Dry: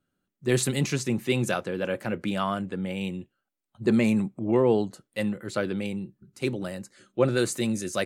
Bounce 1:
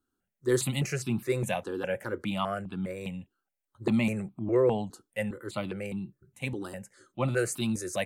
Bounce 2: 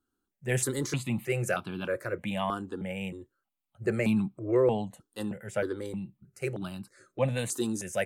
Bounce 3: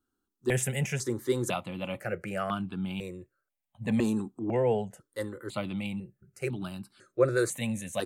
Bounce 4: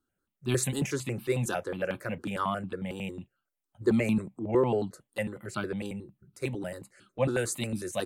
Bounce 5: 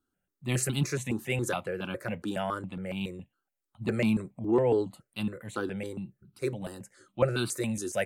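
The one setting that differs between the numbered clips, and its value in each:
stepped phaser, rate: 4.9 Hz, 3.2 Hz, 2 Hz, 11 Hz, 7.2 Hz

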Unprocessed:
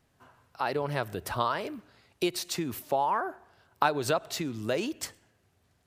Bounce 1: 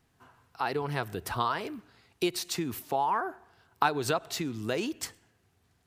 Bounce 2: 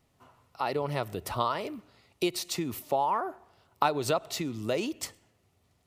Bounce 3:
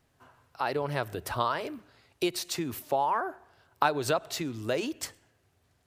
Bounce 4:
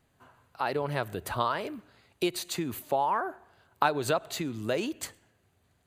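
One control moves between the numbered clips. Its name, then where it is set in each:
band-stop, frequency: 580 Hz, 1.6 kHz, 200 Hz, 5.4 kHz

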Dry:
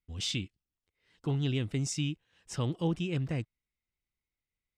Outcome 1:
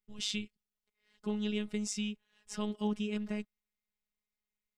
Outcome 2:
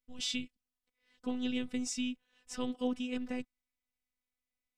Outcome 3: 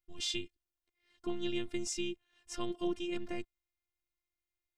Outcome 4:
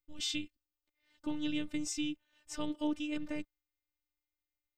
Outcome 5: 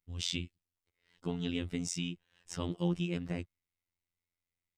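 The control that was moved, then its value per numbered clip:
robot voice, frequency: 210 Hz, 250 Hz, 350 Hz, 300 Hz, 87 Hz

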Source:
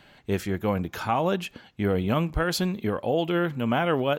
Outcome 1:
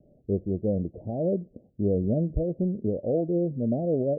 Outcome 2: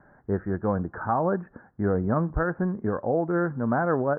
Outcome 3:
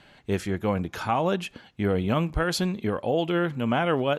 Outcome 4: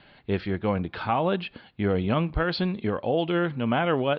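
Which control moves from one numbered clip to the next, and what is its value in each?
steep low-pass, frequency: 640 Hz, 1.7 kHz, 12 kHz, 4.6 kHz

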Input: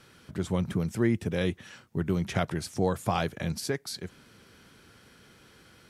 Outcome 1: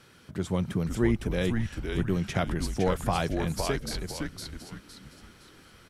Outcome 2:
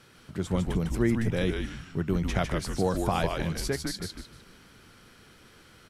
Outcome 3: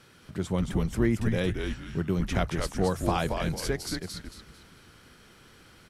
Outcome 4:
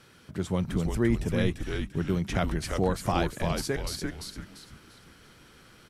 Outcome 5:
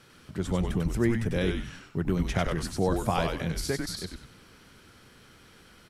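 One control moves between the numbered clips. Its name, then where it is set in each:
frequency-shifting echo, time: 511 ms, 152 ms, 224 ms, 343 ms, 96 ms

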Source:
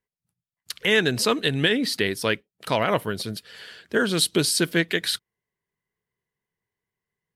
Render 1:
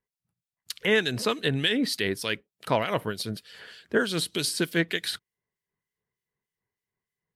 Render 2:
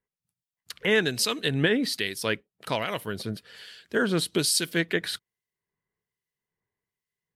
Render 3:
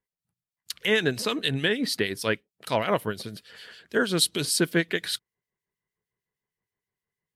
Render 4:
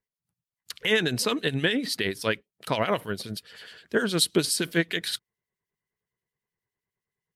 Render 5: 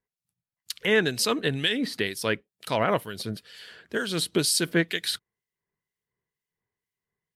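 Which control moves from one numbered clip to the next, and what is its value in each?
harmonic tremolo, rate: 3.3 Hz, 1.2 Hz, 6.5 Hz, 9.6 Hz, 2.1 Hz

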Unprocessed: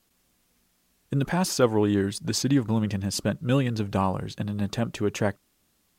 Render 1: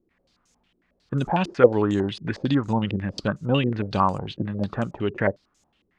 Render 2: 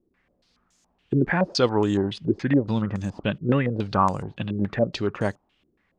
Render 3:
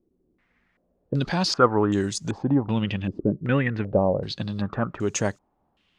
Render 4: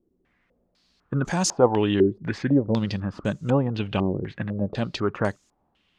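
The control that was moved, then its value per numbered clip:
step-sequenced low-pass, rate: 11 Hz, 7.1 Hz, 2.6 Hz, 4 Hz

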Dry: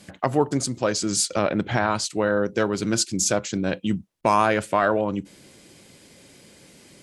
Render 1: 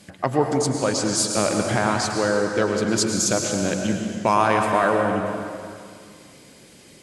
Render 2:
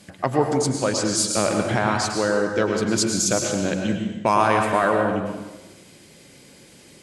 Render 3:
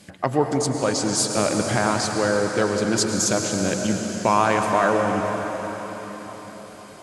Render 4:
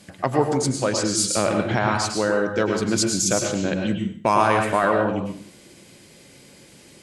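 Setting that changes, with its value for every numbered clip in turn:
plate-style reverb, RT60: 2.3 s, 1.1 s, 5.3 s, 0.51 s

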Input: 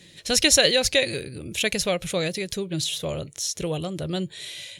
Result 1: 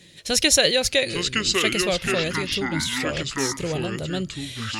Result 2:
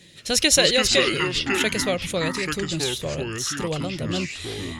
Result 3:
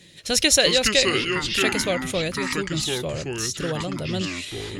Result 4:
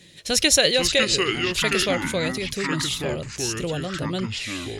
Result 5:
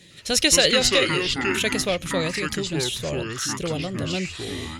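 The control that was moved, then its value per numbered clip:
ever faster or slower copies, time: 731 ms, 156 ms, 235 ms, 370 ms, 104 ms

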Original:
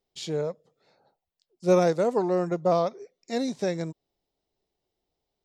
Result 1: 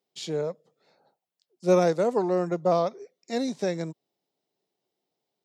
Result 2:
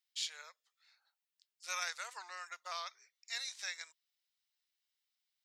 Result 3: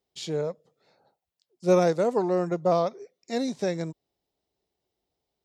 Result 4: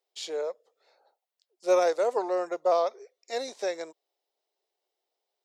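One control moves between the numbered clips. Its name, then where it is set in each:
high-pass, cutoff frequency: 140 Hz, 1.5 kHz, 43 Hz, 440 Hz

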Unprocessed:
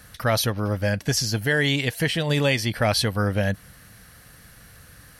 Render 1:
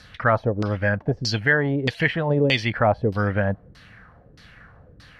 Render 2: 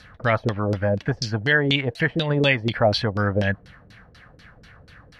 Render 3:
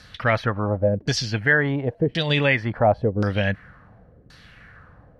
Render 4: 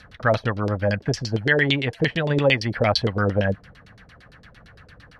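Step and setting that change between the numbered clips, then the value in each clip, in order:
LFO low-pass, rate: 1.6 Hz, 4.1 Hz, 0.93 Hz, 8.8 Hz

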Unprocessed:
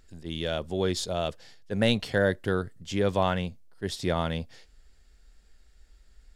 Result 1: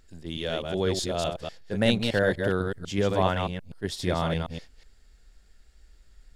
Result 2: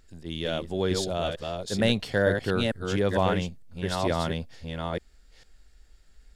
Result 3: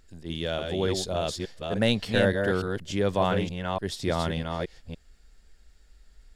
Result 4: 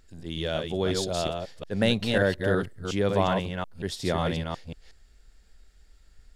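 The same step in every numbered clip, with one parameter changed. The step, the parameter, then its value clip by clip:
chunks repeated in reverse, time: 124 ms, 453 ms, 291 ms, 182 ms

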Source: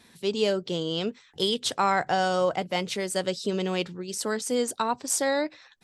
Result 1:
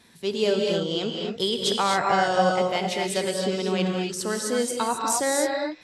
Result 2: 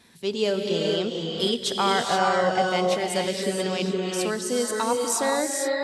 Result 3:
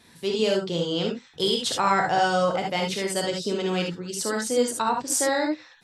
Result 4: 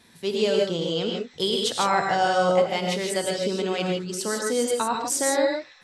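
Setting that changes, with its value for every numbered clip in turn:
gated-style reverb, gate: 290 ms, 500 ms, 90 ms, 180 ms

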